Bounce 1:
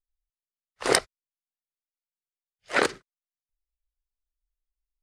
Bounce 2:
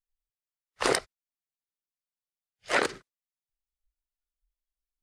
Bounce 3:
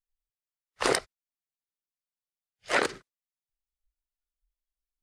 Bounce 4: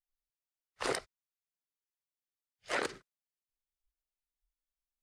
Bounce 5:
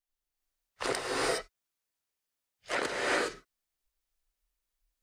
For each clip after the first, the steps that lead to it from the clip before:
noise reduction from a noise print of the clip's start 14 dB; downward compressor 6 to 1, threshold −31 dBFS, peak gain reduction 16 dB; level +8 dB
no processing that can be heard
brickwall limiter −15 dBFS, peak gain reduction 5 dB; level −6 dB
in parallel at −12 dB: soft clipping −29.5 dBFS, distortion −12 dB; on the sum: reverb whose tail is shaped and stops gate 440 ms rising, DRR −4.5 dB

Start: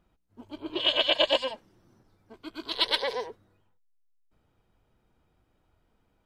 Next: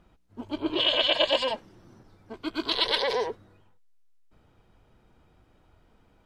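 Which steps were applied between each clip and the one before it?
high-shelf EQ 11,000 Hz −11.5 dB
in parallel at −0.5 dB: compressor whose output falls as the input rises −33 dBFS, ratio −0.5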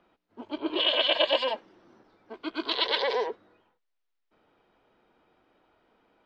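three-way crossover with the lows and the highs turned down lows −21 dB, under 240 Hz, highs −23 dB, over 4,900 Hz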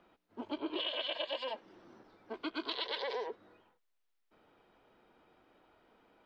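downward compressor 6 to 1, threshold −35 dBFS, peak gain reduction 15.5 dB

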